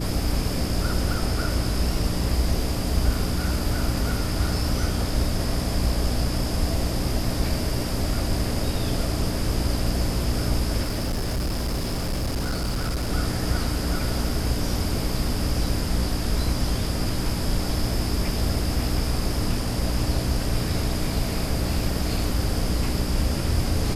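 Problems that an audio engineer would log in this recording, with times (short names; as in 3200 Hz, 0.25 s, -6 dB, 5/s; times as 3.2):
hum 60 Hz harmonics 5 -29 dBFS
10.82–13.12 clipped -22 dBFS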